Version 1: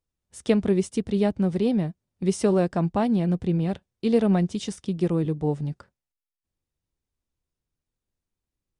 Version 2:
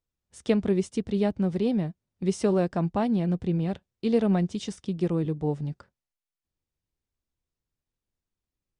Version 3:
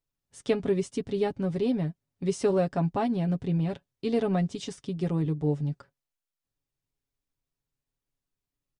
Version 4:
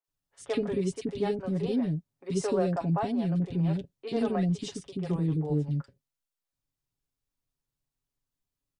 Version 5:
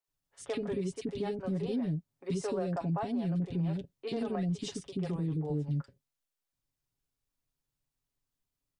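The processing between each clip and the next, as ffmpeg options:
-af "lowpass=8400,volume=0.75"
-af "aecho=1:1:7.2:0.64,volume=0.794"
-filter_complex "[0:a]acrossover=split=450|2100[s0][s1][s2];[s2]adelay=40[s3];[s0]adelay=80[s4];[s4][s1][s3]amix=inputs=3:normalize=0"
-af "alimiter=level_in=1.19:limit=0.0631:level=0:latency=1:release=209,volume=0.841"

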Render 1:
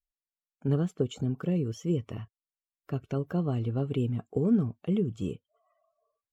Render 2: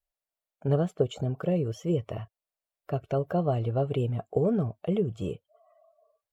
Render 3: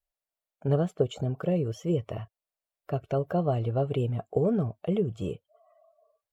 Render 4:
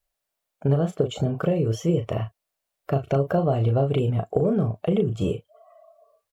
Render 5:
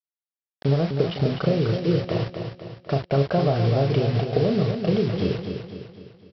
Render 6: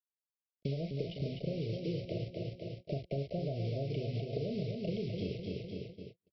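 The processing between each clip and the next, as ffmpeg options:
-af "equalizer=f=250:t=o:w=0.67:g=-8,equalizer=f=630:t=o:w=0.67:g=12,equalizer=f=6300:t=o:w=0.67:g=-4,volume=1.26"
-af anull
-filter_complex "[0:a]acompressor=threshold=0.0447:ratio=6,asplit=2[s0][s1];[s1]adelay=36,volume=0.447[s2];[s0][s2]amix=inputs=2:normalize=0,volume=2.66"
-af "aresample=11025,acrusher=bits=5:mix=0:aa=0.000001,aresample=44100,aecho=1:1:252|504|756|1008|1260|1512:0.447|0.214|0.103|0.0494|0.0237|0.0114"
-filter_complex "[0:a]acrossover=split=83|760[s0][s1][s2];[s0]acompressor=threshold=0.00562:ratio=4[s3];[s1]acompressor=threshold=0.0251:ratio=4[s4];[s2]acompressor=threshold=0.00562:ratio=4[s5];[s3][s4][s5]amix=inputs=3:normalize=0,agate=range=0.00794:threshold=0.00708:ratio=16:detection=peak,asuperstop=centerf=1200:order=20:qfactor=0.86,volume=0.596"

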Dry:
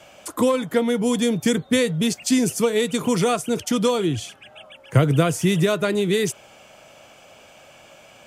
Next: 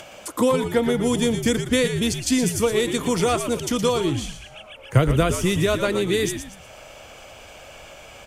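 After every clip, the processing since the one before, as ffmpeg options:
-filter_complex "[0:a]acompressor=mode=upward:threshold=0.0158:ratio=2.5,asubboost=boost=7:cutoff=66,asplit=5[s0][s1][s2][s3][s4];[s1]adelay=117,afreqshift=-82,volume=0.376[s5];[s2]adelay=234,afreqshift=-164,volume=0.135[s6];[s3]adelay=351,afreqshift=-246,volume=0.049[s7];[s4]adelay=468,afreqshift=-328,volume=0.0176[s8];[s0][s5][s6][s7][s8]amix=inputs=5:normalize=0"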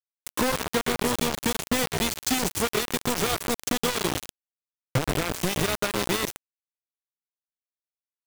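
-af "acompressor=threshold=0.0631:ratio=5,acrusher=bits=3:mix=0:aa=0.000001"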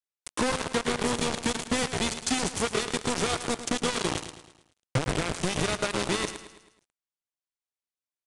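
-filter_complex "[0:a]asplit=2[s0][s1];[s1]aecho=0:1:108|216|324|432|540:0.237|0.116|0.0569|0.0279|0.0137[s2];[s0][s2]amix=inputs=2:normalize=0,aresample=22050,aresample=44100,volume=0.794"

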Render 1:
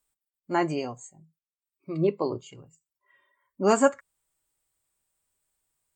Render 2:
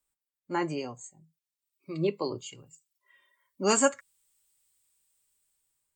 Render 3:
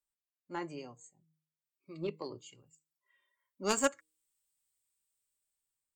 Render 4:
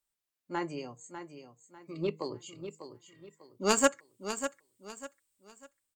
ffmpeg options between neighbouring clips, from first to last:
-filter_complex "[0:a]bandreject=f=690:w=12,acrossover=split=180|710|2400[s0][s1][s2][s3];[s3]dynaudnorm=f=580:g=5:m=3.76[s4];[s0][s1][s2][s4]amix=inputs=4:normalize=0,volume=0.631"
-af "bandreject=f=156.2:t=h:w=4,bandreject=f=312.4:t=h:w=4,bandreject=f=468.6:t=h:w=4,aeval=exprs='0.355*(cos(1*acos(clip(val(0)/0.355,-1,1)))-cos(1*PI/2))+0.0794*(cos(3*acos(clip(val(0)/0.355,-1,1)))-cos(3*PI/2))':c=same,volume=0.891"
-af "aecho=1:1:597|1194|1791|2388:0.316|0.101|0.0324|0.0104,volume=1.78"

